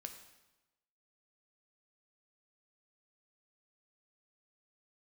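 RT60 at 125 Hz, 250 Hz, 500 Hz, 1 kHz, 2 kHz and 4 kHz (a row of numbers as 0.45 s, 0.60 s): 1.2 s, 1.1 s, 1.0 s, 1.0 s, 0.95 s, 0.90 s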